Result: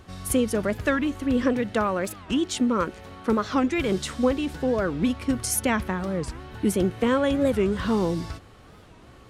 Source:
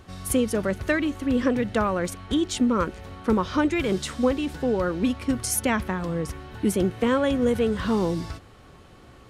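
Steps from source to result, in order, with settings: 1.53–3.78 low shelf 92 Hz -10 dB; record warp 45 rpm, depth 250 cents

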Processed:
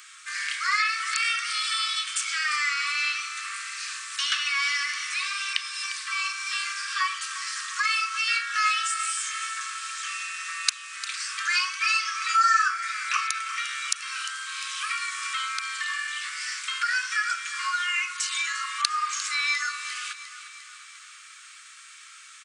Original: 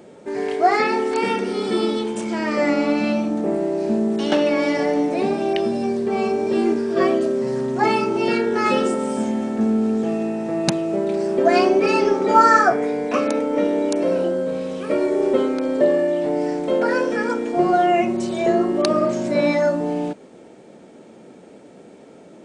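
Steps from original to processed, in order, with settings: Chebyshev high-pass 1100 Hz, order 10; high shelf 2200 Hz +10 dB; compressor 2:1, threshold -35 dBFS, peak gain reduction 14.5 dB; feedback echo 0.351 s, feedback 57%, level -13.5 dB; Doppler distortion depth 0.22 ms; gain +6 dB

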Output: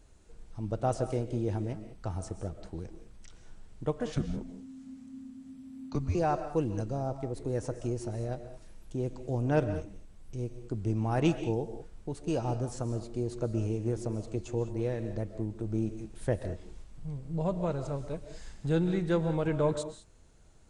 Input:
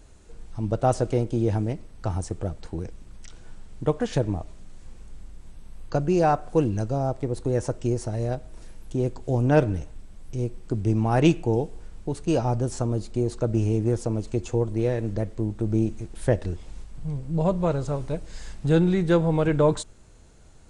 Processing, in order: 4.14–6.15 frequency shift -280 Hz; on a send: reverb, pre-delay 90 ms, DRR 10 dB; on the sum: gain -8 dB

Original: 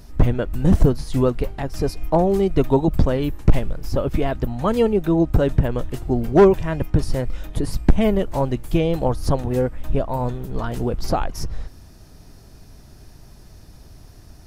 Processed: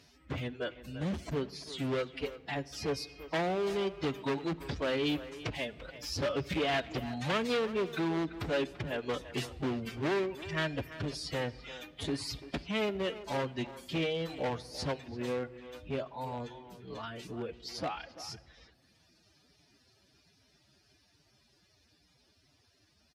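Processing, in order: Doppler pass-by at 5.06, 7 m/s, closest 9.1 m; reverb removal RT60 0.76 s; HPF 50 Hz 24 dB/oct; high shelf 7400 Hz -9.5 dB; compressor 16:1, threshold -24 dBFS, peak gain reduction 14.5 dB; wavefolder -18.5 dBFS; time stretch by phase-locked vocoder 1.6×; hard clip -27.5 dBFS, distortion -11 dB; weighting filter D; speakerphone echo 0.34 s, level -13 dB; shoebox room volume 3400 m³, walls mixed, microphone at 0.31 m

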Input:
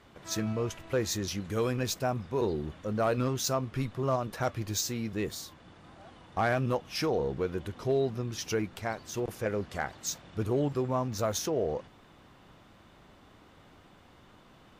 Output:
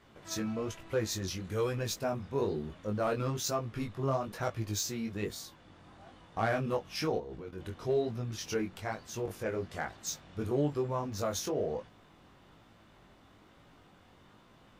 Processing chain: 7.18–7.6 level quantiser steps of 13 dB; chorus 1.1 Hz, delay 17.5 ms, depth 4.7 ms

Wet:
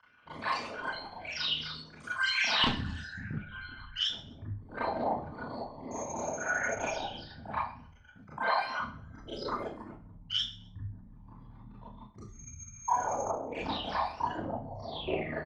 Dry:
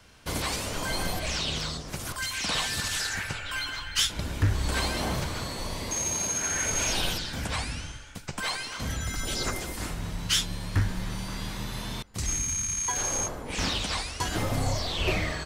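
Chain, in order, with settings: formant sharpening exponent 3; band-pass 1800 Hz, Q 1.3, from 2.64 s 230 Hz, from 3.92 s 810 Hz; feedback echo 0.128 s, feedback 28%, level -20.5 dB; Schroeder reverb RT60 0.32 s, combs from 26 ms, DRR -8 dB; Doppler distortion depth 0.21 ms

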